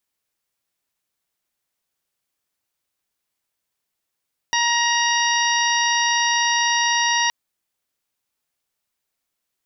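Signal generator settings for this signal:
steady harmonic partials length 2.77 s, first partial 944 Hz, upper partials 0/−3.5/−6/−9/−2.5 dB, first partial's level −21.5 dB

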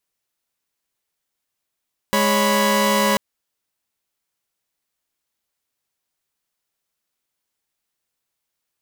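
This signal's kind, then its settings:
held notes G#3/C#5/B5 saw, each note −17.5 dBFS 1.04 s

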